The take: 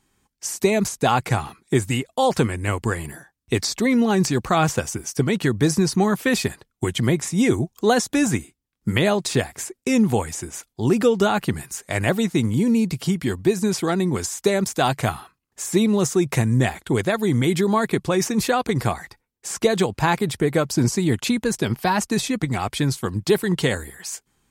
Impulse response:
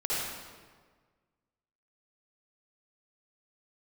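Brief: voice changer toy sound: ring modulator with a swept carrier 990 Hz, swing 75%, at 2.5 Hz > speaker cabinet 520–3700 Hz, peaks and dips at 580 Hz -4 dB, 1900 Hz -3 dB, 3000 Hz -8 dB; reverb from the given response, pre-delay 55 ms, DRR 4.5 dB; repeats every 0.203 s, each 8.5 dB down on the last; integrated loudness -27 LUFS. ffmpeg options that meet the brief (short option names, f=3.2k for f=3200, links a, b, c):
-filter_complex "[0:a]aecho=1:1:203|406|609|812:0.376|0.143|0.0543|0.0206,asplit=2[a][b];[1:a]atrim=start_sample=2205,adelay=55[c];[b][c]afir=irnorm=-1:irlink=0,volume=-13dB[d];[a][d]amix=inputs=2:normalize=0,aeval=exprs='val(0)*sin(2*PI*990*n/s+990*0.75/2.5*sin(2*PI*2.5*n/s))':c=same,highpass=520,equalizer=f=580:t=q:w=4:g=-4,equalizer=f=1.9k:t=q:w=4:g=-3,equalizer=f=3k:t=q:w=4:g=-8,lowpass=f=3.7k:w=0.5412,lowpass=f=3.7k:w=1.3066,volume=-2.5dB"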